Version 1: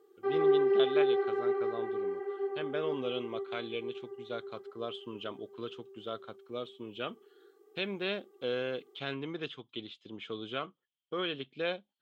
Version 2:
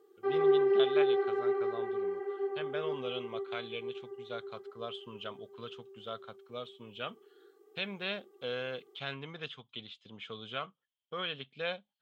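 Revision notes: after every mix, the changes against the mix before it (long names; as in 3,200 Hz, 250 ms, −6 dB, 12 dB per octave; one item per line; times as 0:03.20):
speech: add parametric band 330 Hz −14.5 dB 0.62 octaves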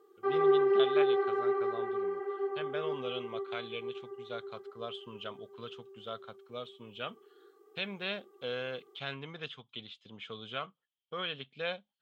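background: add parametric band 1,200 Hz +7 dB 0.59 octaves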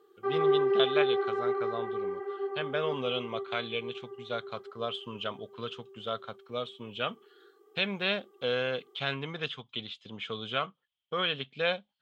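speech +7.0 dB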